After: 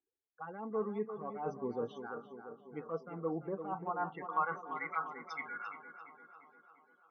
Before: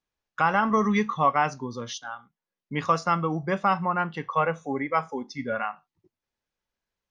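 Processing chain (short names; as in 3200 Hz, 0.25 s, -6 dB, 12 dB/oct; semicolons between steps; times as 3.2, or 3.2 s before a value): bell 570 Hz -9.5 dB 0.4 oct; reverse; compressor 8:1, threshold -38 dBFS, peak gain reduction 20 dB; reverse; loudest bins only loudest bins 32; band-pass sweep 490 Hz -> 3100 Hz, 3.56–5.67; envelope phaser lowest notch 180 Hz, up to 3900 Hz, full sweep at -44 dBFS; on a send: tape echo 0.345 s, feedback 69%, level -8 dB, low-pass 1900 Hz; on the sum: gain +12.5 dB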